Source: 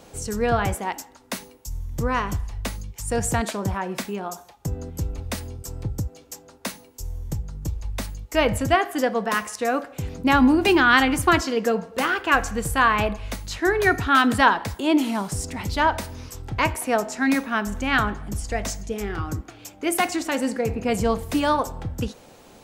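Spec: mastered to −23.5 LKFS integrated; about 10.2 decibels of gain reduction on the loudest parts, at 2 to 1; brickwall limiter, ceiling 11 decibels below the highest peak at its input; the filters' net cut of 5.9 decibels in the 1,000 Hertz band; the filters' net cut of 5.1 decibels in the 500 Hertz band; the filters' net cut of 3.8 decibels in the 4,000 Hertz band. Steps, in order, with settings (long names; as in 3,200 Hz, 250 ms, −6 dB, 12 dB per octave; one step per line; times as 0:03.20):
parametric band 500 Hz −5 dB
parametric band 1,000 Hz −6 dB
parametric band 4,000 Hz −5 dB
downward compressor 2 to 1, threshold −33 dBFS
level +13.5 dB
brickwall limiter −14 dBFS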